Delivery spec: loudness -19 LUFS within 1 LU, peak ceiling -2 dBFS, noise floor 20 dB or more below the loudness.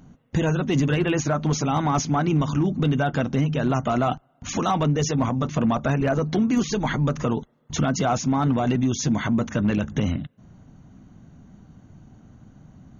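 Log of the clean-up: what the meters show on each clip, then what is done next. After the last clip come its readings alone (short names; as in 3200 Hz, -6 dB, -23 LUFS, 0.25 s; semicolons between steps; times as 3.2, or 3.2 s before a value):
clipped 0.4%; flat tops at -14.0 dBFS; loudness -23.5 LUFS; peak -14.0 dBFS; loudness target -19.0 LUFS
-> clip repair -14 dBFS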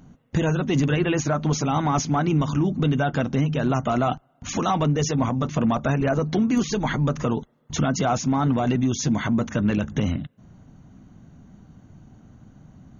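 clipped 0.0%; loudness -23.5 LUFS; peak -9.0 dBFS; loudness target -19.0 LUFS
-> gain +4.5 dB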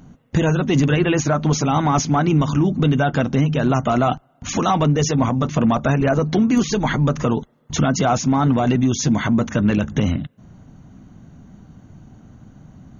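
loudness -19.0 LUFS; peak -4.5 dBFS; noise floor -57 dBFS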